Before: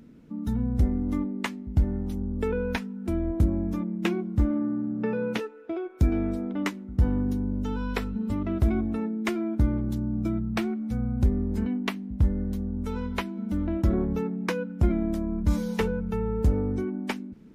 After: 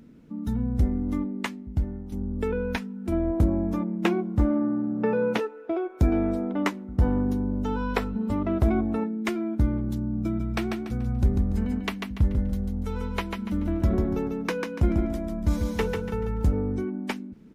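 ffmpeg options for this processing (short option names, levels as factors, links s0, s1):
-filter_complex "[0:a]asettb=1/sr,asplit=3[s0][s1][s2];[s0]atrim=end=3.124[s3];[s1]atrim=start=3.12:end=9.04,asetpts=PTS-STARTPTS,afade=t=in:d=0.004:c=qsin,afade=t=out:st=5.916:d=0.004:c=qsin,equalizer=f=750:w=0.66:g=7.5[s4];[s2]atrim=start=9.036[s5];[s3][s4]acrossfade=d=0.004:c1=hsin:c2=qsin[s6];[s6][s5]acrossfade=d=0.004:c1=qsin:c2=hsin,asplit=3[s7][s8][s9];[s7]afade=t=out:st=10.39:d=0.02[s10];[s8]aecho=1:1:144|288|432|576:0.562|0.186|0.0612|0.0202,afade=t=in:st=10.39:d=0.02,afade=t=out:st=16.52:d=0.02[s11];[s9]afade=t=in:st=16.52:d=0.02[s12];[s10][s11][s12]amix=inputs=3:normalize=0,asplit=2[s13][s14];[s13]atrim=end=2.12,asetpts=PTS-STARTPTS,afade=t=out:st=1.43:d=0.69:silence=0.354813[s15];[s14]atrim=start=2.12,asetpts=PTS-STARTPTS,afade=t=in:d=0.004:c=hsin:silence=0.354813[s16];[s15][s16]concat=n=2:v=0:a=1"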